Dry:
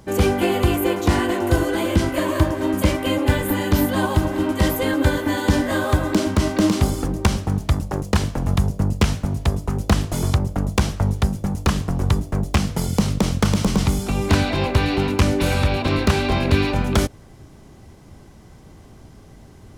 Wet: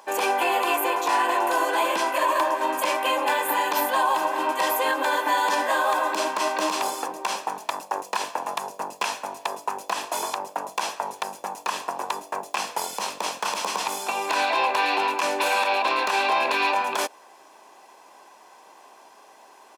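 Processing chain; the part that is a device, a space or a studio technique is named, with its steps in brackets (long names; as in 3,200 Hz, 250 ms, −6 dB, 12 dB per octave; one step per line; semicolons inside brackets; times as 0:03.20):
laptop speaker (high-pass filter 430 Hz 24 dB per octave; parametric band 1,000 Hz +10 dB 0.48 octaves; parametric band 2,600 Hz +5.5 dB 0.21 octaves; brickwall limiter −13.5 dBFS, peak gain reduction 11 dB)
comb filter 1.2 ms, depth 33%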